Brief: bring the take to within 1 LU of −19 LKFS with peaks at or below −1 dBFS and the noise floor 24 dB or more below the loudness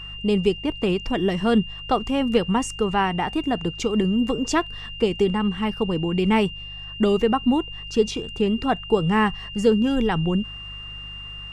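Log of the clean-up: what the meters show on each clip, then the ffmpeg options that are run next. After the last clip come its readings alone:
mains hum 50 Hz; hum harmonics up to 150 Hz; level of the hum −39 dBFS; interfering tone 2,800 Hz; level of the tone −35 dBFS; integrated loudness −22.5 LKFS; sample peak −6.5 dBFS; target loudness −19.0 LKFS
→ -af "bandreject=frequency=50:width_type=h:width=4,bandreject=frequency=100:width_type=h:width=4,bandreject=frequency=150:width_type=h:width=4"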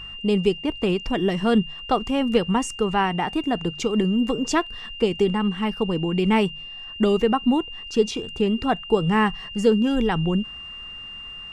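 mains hum none found; interfering tone 2,800 Hz; level of the tone −35 dBFS
→ -af "bandreject=frequency=2800:width=30"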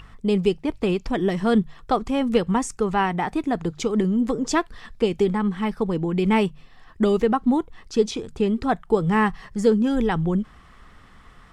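interfering tone none found; integrated loudness −23.0 LKFS; sample peak −7.0 dBFS; target loudness −19.0 LKFS
→ -af "volume=4dB"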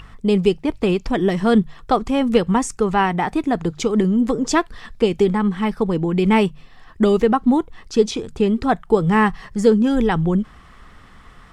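integrated loudness −19.0 LKFS; sample peak −3.0 dBFS; background noise floor −45 dBFS

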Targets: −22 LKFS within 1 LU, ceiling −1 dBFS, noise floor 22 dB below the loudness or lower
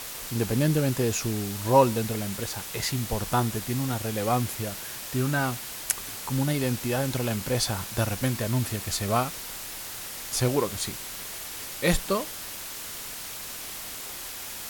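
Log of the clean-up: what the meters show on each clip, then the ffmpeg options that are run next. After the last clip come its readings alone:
background noise floor −38 dBFS; target noise floor −50 dBFS; integrated loudness −28.0 LKFS; sample peak −3.0 dBFS; target loudness −22.0 LKFS
→ -af "afftdn=noise_reduction=12:noise_floor=-38"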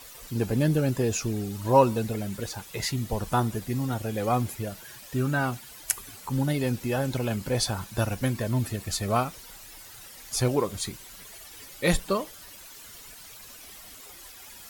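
background noise floor −47 dBFS; target noise floor −50 dBFS
→ -af "afftdn=noise_reduction=6:noise_floor=-47"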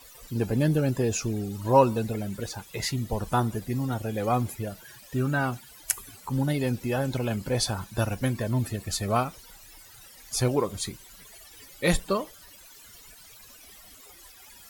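background noise floor −51 dBFS; integrated loudness −28.0 LKFS; sample peak −3.5 dBFS; target loudness −22.0 LKFS
→ -af "volume=6dB,alimiter=limit=-1dB:level=0:latency=1"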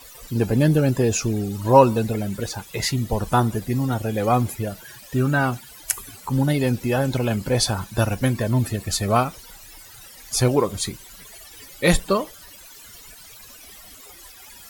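integrated loudness −22.0 LKFS; sample peak −1.0 dBFS; background noise floor −45 dBFS

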